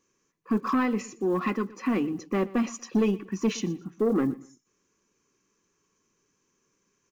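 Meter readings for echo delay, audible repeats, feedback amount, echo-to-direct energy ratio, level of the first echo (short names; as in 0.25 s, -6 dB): 0.12 s, 2, 30%, -19.5 dB, -20.0 dB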